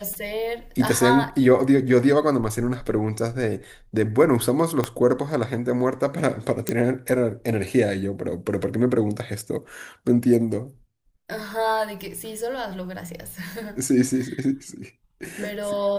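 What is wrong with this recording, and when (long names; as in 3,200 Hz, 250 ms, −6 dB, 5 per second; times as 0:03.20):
0:04.84: click −9 dBFS
0:06.69: click −8 dBFS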